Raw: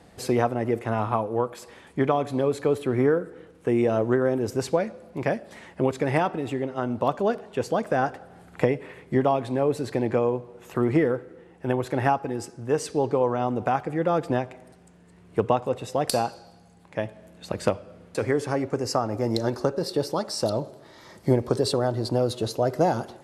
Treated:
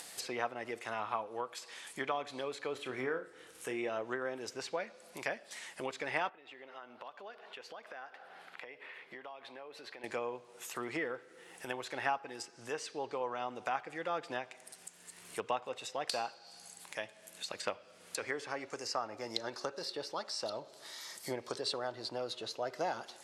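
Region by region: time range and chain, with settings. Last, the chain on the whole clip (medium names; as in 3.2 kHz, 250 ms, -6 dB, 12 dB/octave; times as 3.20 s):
2.72–3.89 s: bass shelf 64 Hz +11 dB + flutter echo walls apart 5.3 m, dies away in 0.2 s
6.29–10.04 s: high-pass 630 Hz 6 dB/octave + compression 2:1, threshold -45 dBFS + distance through air 340 m
whole clip: differentiator; low-pass that closes with the level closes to 2.7 kHz, closed at -40.5 dBFS; upward compressor, threshold -48 dBFS; trim +7.5 dB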